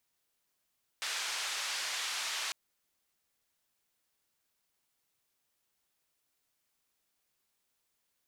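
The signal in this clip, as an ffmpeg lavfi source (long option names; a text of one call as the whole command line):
ffmpeg -f lavfi -i "anoisesrc=color=white:duration=1.5:sample_rate=44100:seed=1,highpass=frequency=1000,lowpass=frequency=5600,volume=-25.1dB" out.wav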